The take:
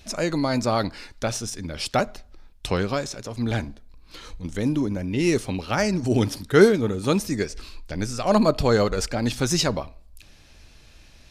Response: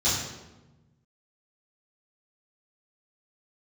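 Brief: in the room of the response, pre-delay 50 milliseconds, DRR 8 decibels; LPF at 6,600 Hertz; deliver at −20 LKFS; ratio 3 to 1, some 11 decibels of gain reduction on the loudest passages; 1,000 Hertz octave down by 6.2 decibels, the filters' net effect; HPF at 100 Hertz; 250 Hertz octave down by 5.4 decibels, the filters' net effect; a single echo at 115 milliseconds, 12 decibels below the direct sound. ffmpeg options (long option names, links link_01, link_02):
-filter_complex "[0:a]highpass=100,lowpass=6600,equalizer=frequency=250:width_type=o:gain=-6.5,equalizer=frequency=1000:width_type=o:gain=-8.5,acompressor=threshold=-28dB:ratio=3,aecho=1:1:115:0.251,asplit=2[link_01][link_02];[1:a]atrim=start_sample=2205,adelay=50[link_03];[link_02][link_03]afir=irnorm=-1:irlink=0,volume=-20.5dB[link_04];[link_01][link_04]amix=inputs=2:normalize=0,volume=11dB"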